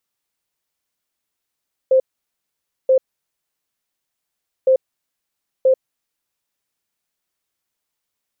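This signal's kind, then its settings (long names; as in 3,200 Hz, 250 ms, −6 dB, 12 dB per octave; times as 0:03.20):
beeps in groups sine 523 Hz, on 0.09 s, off 0.89 s, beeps 2, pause 1.69 s, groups 2, −9.5 dBFS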